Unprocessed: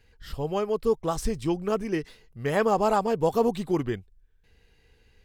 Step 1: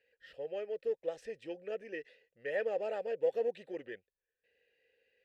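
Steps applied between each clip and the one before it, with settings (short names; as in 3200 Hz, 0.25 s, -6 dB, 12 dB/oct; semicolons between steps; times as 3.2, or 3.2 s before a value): in parallel at -7 dB: soft clip -27.5 dBFS, distortion -7 dB; on the sum: vowel filter e; low shelf 390 Hz -7.5 dB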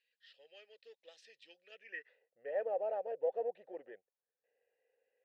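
band-pass sweep 4000 Hz -> 730 Hz, 1.7–2.23; gain +3 dB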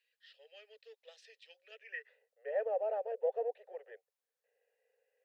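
Chebyshev high-pass 420 Hz, order 6; gain +2 dB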